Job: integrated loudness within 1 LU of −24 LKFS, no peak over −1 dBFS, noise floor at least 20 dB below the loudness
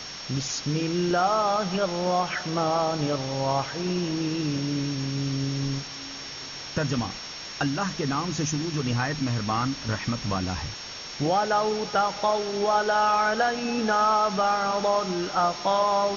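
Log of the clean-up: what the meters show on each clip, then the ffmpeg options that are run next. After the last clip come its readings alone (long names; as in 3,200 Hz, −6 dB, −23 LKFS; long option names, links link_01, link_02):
interfering tone 5,500 Hz; level of the tone −39 dBFS; background noise floor −38 dBFS; target noise floor −46 dBFS; integrated loudness −26.0 LKFS; sample peak −11.5 dBFS; target loudness −24.0 LKFS
→ -af "bandreject=frequency=5500:width=30"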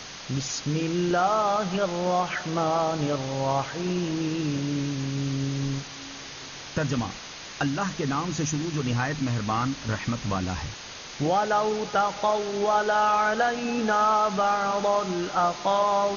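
interfering tone none found; background noise floor −40 dBFS; target noise floor −46 dBFS
→ -af "afftdn=noise_reduction=6:noise_floor=-40"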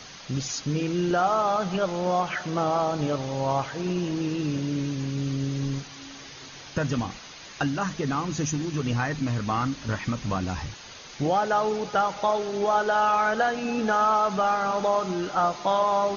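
background noise floor −44 dBFS; target noise floor −46 dBFS
→ -af "afftdn=noise_reduction=6:noise_floor=-44"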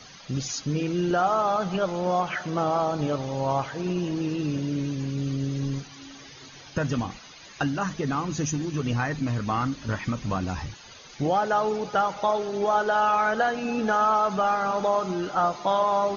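background noise floor −47 dBFS; integrated loudness −26.0 LKFS; sample peak −12.0 dBFS; target loudness −24.0 LKFS
→ -af "volume=2dB"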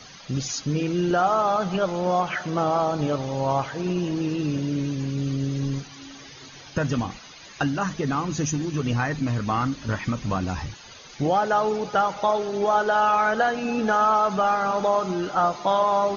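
integrated loudness −24.0 LKFS; sample peak −10.0 dBFS; background noise floor −45 dBFS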